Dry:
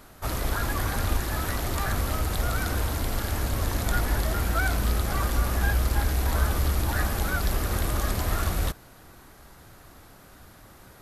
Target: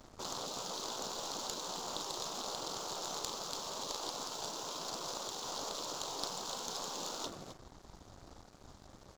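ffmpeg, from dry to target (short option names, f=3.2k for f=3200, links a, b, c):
-filter_complex "[0:a]asplit=2[a][b];[b]adelay=135,lowpass=f=1.7k:p=1,volume=-20.5dB,asplit=2[c][d];[d]adelay=135,lowpass=f=1.7k:p=1,volume=0.47,asplit=2[e][f];[f]adelay=135,lowpass=f=1.7k:p=1,volume=0.47[g];[c][e][g]amix=inputs=3:normalize=0[h];[a][h]amix=inputs=2:normalize=0,aresample=16000,aresample=44100,atempo=1.2,asplit=2[i][j];[j]aecho=0:1:34.99|262.4:0.282|0.251[k];[i][k]amix=inputs=2:normalize=0,afftfilt=real='re*lt(hypot(re,im),0.0562)':imag='im*lt(hypot(re,im),0.0562)':win_size=1024:overlap=0.75,asuperstop=centerf=2000:order=4:qfactor=0.83,aeval=exprs='0.106*(cos(1*acos(clip(val(0)/0.106,-1,1)))-cos(1*PI/2))+0.0335*(cos(2*acos(clip(val(0)/0.106,-1,1)))-cos(2*PI/2))+0.00531*(cos(6*acos(clip(val(0)/0.106,-1,1)))-cos(6*PI/2))+0.00266*(cos(8*acos(clip(val(0)/0.106,-1,1)))-cos(8*PI/2))':c=same,aeval=exprs='sgn(val(0))*max(abs(val(0))-0.00237,0)':c=same,volume=1.5dB"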